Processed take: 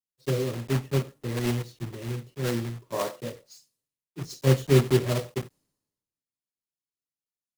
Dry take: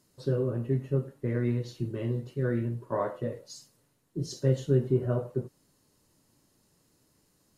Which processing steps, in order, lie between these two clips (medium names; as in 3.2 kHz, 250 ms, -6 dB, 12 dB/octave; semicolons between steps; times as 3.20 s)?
block-companded coder 3-bit; band-stop 1.5 kHz, Q 22; three bands expanded up and down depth 100%